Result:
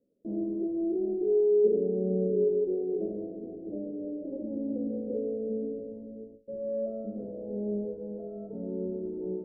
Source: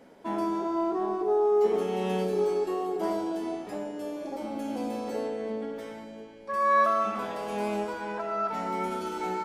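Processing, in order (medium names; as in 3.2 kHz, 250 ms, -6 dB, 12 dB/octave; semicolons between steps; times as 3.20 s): de-hum 82.32 Hz, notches 17; gate with hold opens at -40 dBFS; elliptic low-pass 530 Hz, stop band 50 dB; trim +2 dB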